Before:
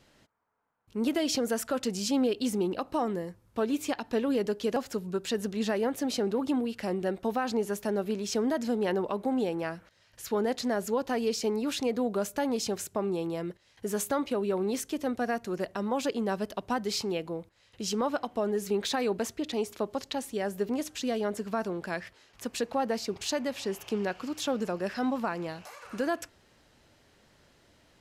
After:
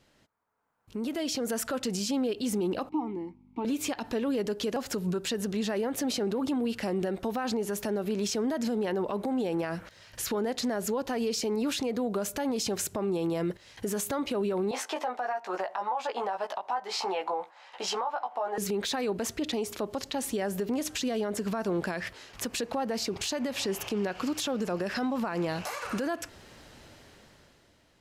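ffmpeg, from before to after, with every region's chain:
-filter_complex "[0:a]asettb=1/sr,asplit=3[s0][s1][s2];[s0]atrim=end=2.894[s3];[s1]atrim=start=2.89:end=3.65,asetpts=PTS-STARTPTS,afade=t=in:d=0.004:c=qsin,afade=t=out:st=0.756:d=0.004:c=qsin,aeval=exprs='val(0)+0.00501*(sin(2*PI*50*n/s)+sin(2*PI*2*50*n/s)/2+sin(2*PI*3*50*n/s)/3+sin(2*PI*4*50*n/s)/4+sin(2*PI*5*50*n/s)/5)':c=same,asplit=3[s4][s5][s6];[s4]bandpass=f=300:t=q:w=8,volume=1[s7];[s5]bandpass=f=870:t=q:w=8,volume=0.501[s8];[s6]bandpass=f=2240:t=q:w=8,volume=0.355[s9];[s7][s8][s9]amix=inputs=3:normalize=0[s10];[s2]atrim=start=3.646[s11];[s3][s10]acrossfade=d=0.004:c1=hsin:c2=qsin[s12];[s12][s11]acrossfade=d=0.004:c1=qsin:c2=hsin,asettb=1/sr,asplit=3[s13][s14][s15];[s13]atrim=end=14.714[s16];[s14]atrim=start=14.71:end=18.58,asetpts=PTS-STARTPTS,afade=t=in:d=0.004:c=qsin,afade=t=out:st=3.866:d=0.004:c=qsin,highpass=f=830:t=q:w=3.8,aemphasis=mode=reproduction:type=75fm,asplit=2[s17][s18];[s18]adelay=16,volume=0.631[s19];[s17][s19]amix=inputs=2:normalize=0,atrim=end_sample=170667[s20];[s15]atrim=start=18.576[s21];[s16][s20]acrossfade=d=0.004:c1=hsin:c2=qsin[s22];[s22][s21]acrossfade=d=0.004:c1=qsin:c2=hsin,acompressor=threshold=0.02:ratio=6,alimiter=level_in=2.99:limit=0.0631:level=0:latency=1:release=53,volume=0.335,dynaudnorm=f=150:g=13:m=5.01,volume=0.708"

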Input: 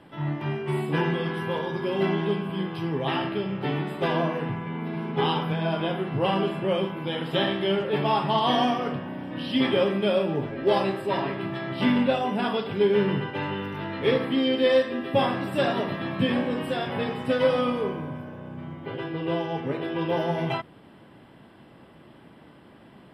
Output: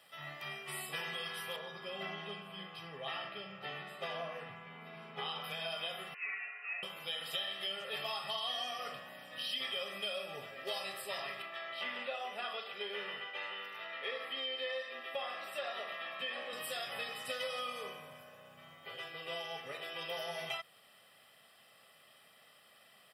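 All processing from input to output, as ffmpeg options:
-filter_complex "[0:a]asettb=1/sr,asplit=3[s0][s1][s2];[s0]atrim=end=1.564[s3];[s1]atrim=start=1.56:end=5.44,asetpts=PTS-STARTPTS,afade=t=in:d=0.004:c=qsin,afade=t=out:st=3.876:d=0.004:c=qsin,lowpass=f=1700:p=1,equalizer=f=180:w=6.6:g=6[s4];[s2]atrim=start=5.436[s5];[s3][s4]acrossfade=d=0.004:c1=hsin:c2=qsin[s6];[s6][s5]acrossfade=d=0.004:c1=qsin:c2=hsin,asettb=1/sr,asplit=3[s7][s8][s9];[s7]atrim=end=6.144[s10];[s8]atrim=start=6.14:end=6.83,asetpts=PTS-STARTPTS,afade=t=in:d=0.004:c=qsin,afade=t=out:st=0.686:d=0.004:c=qsin,highpass=1300,lowpass=f=2600:t=q:w=0.5098,lowpass=f=2600:t=q:w=0.6013,lowpass=f=2600:t=q:w=0.9,lowpass=f=2600:t=q:w=2.563,afreqshift=-3100[s11];[s9]atrim=start=6.826[s12];[s10][s11]acrossfade=d=0.004:c1=hsin:c2=qsin[s13];[s13][s12]acrossfade=d=0.004:c1=qsin:c2=hsin,asettb=1/sr,asplit=3[s14][s15][s16];[s14]atrim=end=11.424[s17];[s15]atrim=start=11.42:end=16.53,asetpts=PTS-STARTPTS,afade=t=in:d=0.004:c=qsin,afade=t=out:st=5.106:d=0.004:c=qsin,acrossover=split=2700[s18][s19];[s19]acompressor=threshold=0.0112:ratio=4:attack=1:release=60[s20];[s18][s20]amix=inputs=2:normalize=0,acrossover=split=240 3800:gain=0.1 1 0.224[s21][s22][s23];[s21][s22][s23]amix=inputs=3:normalize=0[s24];[s16]atrim=start=16.526[s25];[s17][s24]acrossfade=d=0.004:c1=hsin:c2=qsin[s26];[s26][s25]acrossfade=d=0.004:c1=qsin:c2=hsin,aderivative,aecho=1:1:1.6:0.71,acompressor=threshold=0.00891:ratio=5,volume=1.78"

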